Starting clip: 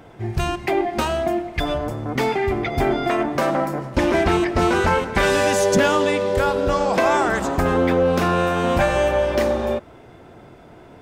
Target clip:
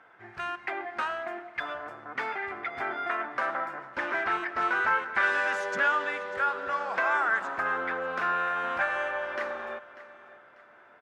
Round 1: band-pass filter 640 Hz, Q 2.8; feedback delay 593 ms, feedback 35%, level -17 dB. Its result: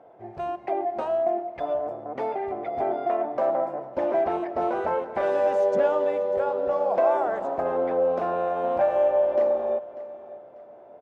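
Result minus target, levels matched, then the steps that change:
2 kHz band -18.5 dB
change: band-pass filter 1.5 kHz, Q 2.8

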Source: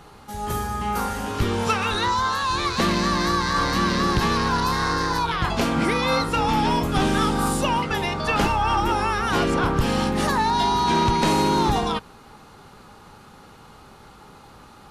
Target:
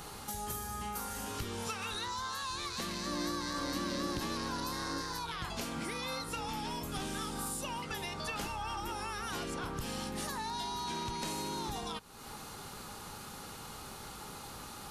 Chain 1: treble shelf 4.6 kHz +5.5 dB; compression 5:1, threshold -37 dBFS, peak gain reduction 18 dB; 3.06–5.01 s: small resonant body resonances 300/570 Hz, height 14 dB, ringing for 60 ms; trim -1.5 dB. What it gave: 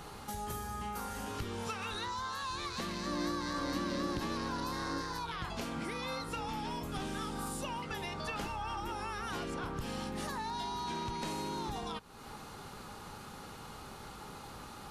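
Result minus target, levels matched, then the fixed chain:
8 kHz band -5.0 dB
treble shelf 4.6 kHz +15 dB; compression 5:1, threshold -37 dBFS, peak gain reduction 19 dB; 3.06–5.01 s: small resonant body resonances 300/570 Hz, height 14 dB, ringing for 60 ms; trim -1.5 dB

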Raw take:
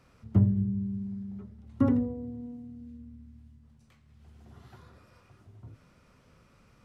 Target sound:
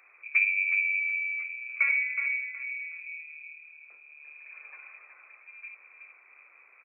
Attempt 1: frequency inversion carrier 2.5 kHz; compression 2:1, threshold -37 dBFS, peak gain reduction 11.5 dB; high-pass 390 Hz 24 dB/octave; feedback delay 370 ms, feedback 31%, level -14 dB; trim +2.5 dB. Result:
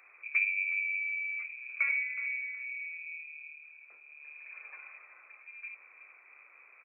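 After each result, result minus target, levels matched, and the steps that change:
compression: peak gain reduction +5 dB; echo-to-direct -6.5 dB
change: compression 2:1, threshold -27.5 dBFS, peak gain reduction 7 dB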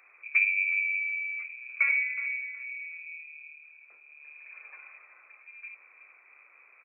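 echo-to-direct -6.5 dB
change: feedback delay 370 ms, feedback 31%, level -7.5 dB

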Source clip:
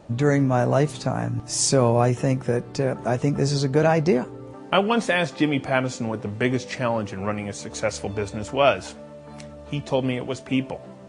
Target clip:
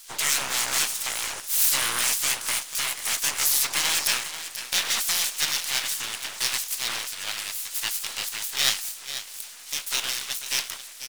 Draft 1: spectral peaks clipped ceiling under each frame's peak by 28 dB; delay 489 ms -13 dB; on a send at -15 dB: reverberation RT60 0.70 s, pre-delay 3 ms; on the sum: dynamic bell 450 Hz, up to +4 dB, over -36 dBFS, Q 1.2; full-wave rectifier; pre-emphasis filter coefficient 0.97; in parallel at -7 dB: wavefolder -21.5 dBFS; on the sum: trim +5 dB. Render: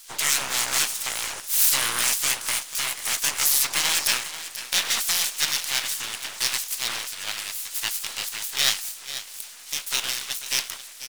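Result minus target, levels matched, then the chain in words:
wavefolder: distortion -10 dB
spectral peaks clipped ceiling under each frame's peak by 28 dB; delay 489 ms -13 dB; on a send at -15 dB: reverberation RT60 0.70 s, pre-delay 3 ms; on the sum: dynamic bell 450 Hz, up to +4 dB, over -36 dBFS, Q 1.2; full-wave rectifier; pre-emphasis filter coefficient 0.97; in parallel at -7 dB: wavefolder -28.5 dBFS; on the sum: trim +5 dB

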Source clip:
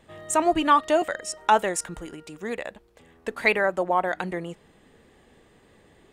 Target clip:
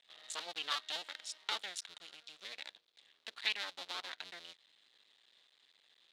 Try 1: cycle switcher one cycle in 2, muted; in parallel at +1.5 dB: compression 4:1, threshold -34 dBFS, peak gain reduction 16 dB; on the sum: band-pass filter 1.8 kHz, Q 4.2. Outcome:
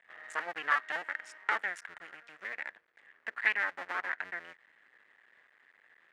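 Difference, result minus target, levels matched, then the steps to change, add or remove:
4 kHz band -17.0 dB
change: band-pass filter 3.8 kHz, Q 4.2

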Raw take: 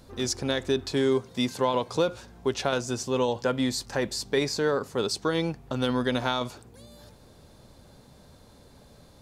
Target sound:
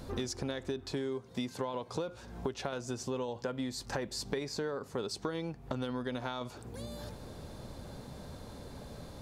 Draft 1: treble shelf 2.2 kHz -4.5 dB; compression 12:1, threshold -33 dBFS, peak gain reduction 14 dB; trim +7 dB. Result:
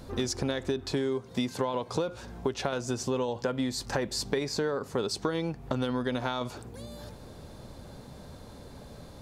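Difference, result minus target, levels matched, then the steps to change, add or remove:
compression: peak gain reduction -6.5 dB
change: compression 12:1, threshold -40 dBFS, peak gain reduction 20.5 dB

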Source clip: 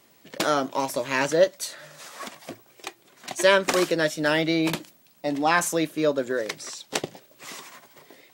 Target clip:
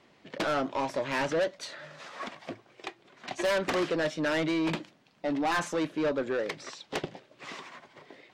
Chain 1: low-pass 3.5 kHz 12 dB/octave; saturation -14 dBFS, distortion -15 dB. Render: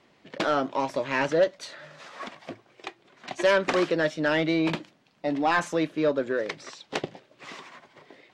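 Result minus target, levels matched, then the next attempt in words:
saturation: distortion -8 dB
low-pass 3.5 kHz 12 dB/octave; saturation -24 dBFS, distortion -7 dB

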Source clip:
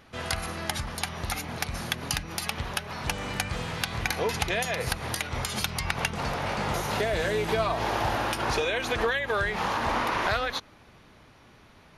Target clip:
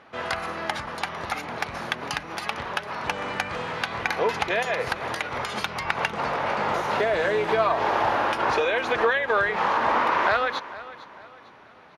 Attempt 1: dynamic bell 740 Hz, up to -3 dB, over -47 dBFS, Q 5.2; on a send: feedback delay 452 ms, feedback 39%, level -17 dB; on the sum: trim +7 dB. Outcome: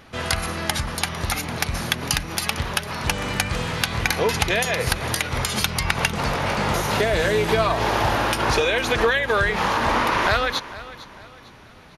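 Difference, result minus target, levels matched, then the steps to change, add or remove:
1 kHz band -3.0 dB
add after dynamic bell: band-pass filter 890 Hz, Q 0.63

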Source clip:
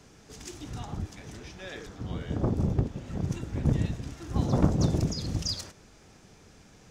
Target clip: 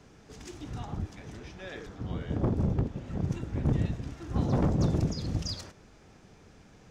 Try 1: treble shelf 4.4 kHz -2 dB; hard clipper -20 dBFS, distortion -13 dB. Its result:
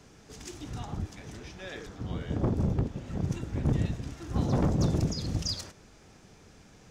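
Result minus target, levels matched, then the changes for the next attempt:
8 kHz band +5.0 dB
change: treble shelf 4.4 kHz -9.5 dB

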